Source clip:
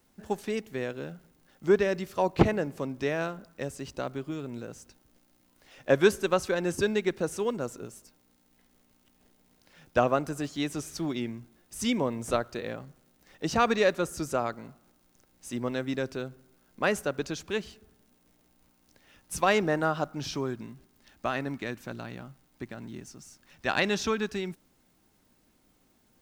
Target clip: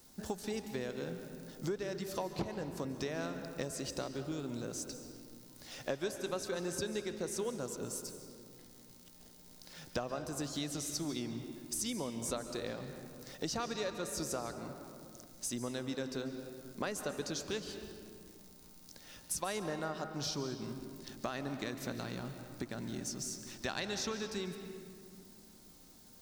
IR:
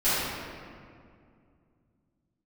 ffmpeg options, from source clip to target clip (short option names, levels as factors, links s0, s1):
-filter_complex "[0:a]highshelf=f=3400:t=q:w=1.5:g=6.5,acompressor=threshold=0.01:ratio=6,asplit=2[s0][s1];[1:a]atrim=start_sample=2205,adelay=132[s2];[s1][s2]afir=irnorm=-1:irlink=0,volume=0.075[s3];[s0][s3]amix=inputs=2:normalize=0,volume=1.5"